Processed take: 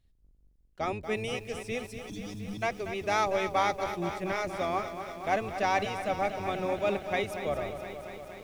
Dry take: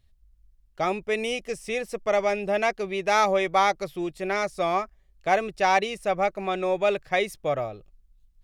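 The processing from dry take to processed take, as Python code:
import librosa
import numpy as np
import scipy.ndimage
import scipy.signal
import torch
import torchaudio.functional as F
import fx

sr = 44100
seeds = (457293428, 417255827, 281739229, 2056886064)

y = fx.octave_divider(x, sr, octaves=1, level_db=-1.0)
y = fx.spec_erase(y, sr, start_s=1.79, length_s=0.83, low_hz=330.0, high_hz=3200.0)
y = fx.echo_crushed(y, sr, ms=236, feedback_pct=80, bits=8, wet_db=-10.0)
y = F.gain(torch.from_numpy(y), -6.5).numpy()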